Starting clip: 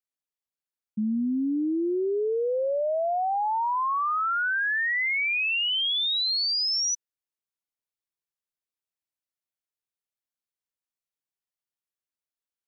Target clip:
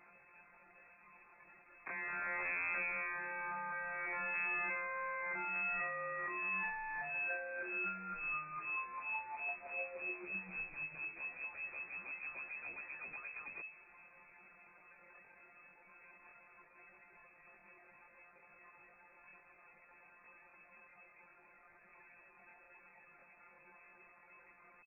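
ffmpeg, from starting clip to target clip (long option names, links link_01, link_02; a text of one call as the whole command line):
ffmpeg -i in.wav -filter_complex "[0:a]aeval=exprs='val(0)+0.5*0.00562*sgn(val(0))':channel_layout=same,aeval=exprs='(tanh(112*val(0)+0.35)-tanh(0.35))/112':channel_layout=same,acrossover=split=260[link_01][link_02];[link_02]acompressor=threshold=-50dB:ratio=10[link_03];[link_01][link_03]amix=inputs=2:normalize=0,afftfilt=real='hypot(re,im)*cos(PI*b)':imag='0':win_size=1024:overlap=0.75,aeval=exprs='(mod(299*val(0)+1,2)-1)/299':channel_layout=same,bandreject=frequency=236.8:width_type=h:width=4,bandreject=frequency=473.6:width_type=h:width=4,bandreject=frequency=710.4:width_type=h:width=4,bandreject=frequency=947.2:width_type=h:width=4,bandreject=frequency=1184:width_type=h:width=4,bandreject=frequency=1420.8:width_type=h:width=4,bandreject=frequency=1657.6:width_type=h:width=4,bandreject=frequency=1894.4:width_type=h:width=4,bandreject=frequency=2131.2:width_type=h:width=4,bandreject=frequency=2368:width_type=h:width=4,bandreject=frequency=2604.8:width_type=h:width=4,bandreject=frequency=2841.6:width_type=h:width=4,bandreject=frequency=3078.4:width_type=h:width=4,bandreject=frequency=3315.2:width_type=h:width=4,bandreject=frequency=3552:width_type=h:width=4,bandreject=frequency=3788.8:width_type=h:width=4,bandreject=frequency=4025.6:width_type=h:width=4,bandreject=frequency=4262.4:width_type=h:width=4,atempo=0.51,asplit=2[link_04][link_05];[link_05]asplit=5[link_06][link_07][link_08][link_09][link_10];[link_06]adelay=357,afreqshift=-120,volume=-21dB[link_11];[link_07]adelay=714,afreqshift=-240,volume=-24.9dB[link_12];[link_08]adelay=1071,afreqshift=-360,volume=-28.8dB[link_13];[link_09]adelay=1428,afreqshift=-480,volume=-32.6dB[link_14];[link_10]adelay=1785,afreqshift=-600,volume=-36.5dB[link_15];[link_11][link_12][link_13][link_14][link_15]amix=inputs=5:normalize=0[link_16];[link_04][link_16]amix=inputs=2:normalize=0,lowpass=frequency=2200:width_type=q:width=0.5098,lowpass=frequency=2200:width_type=q:width=0.6013,lowpass=frequency=2200:width_type=q:width=0.9,lowpass=frequency=2200:width_type=q:width=2.563,afreqshift=-2600,volume=14.5dB" out.wav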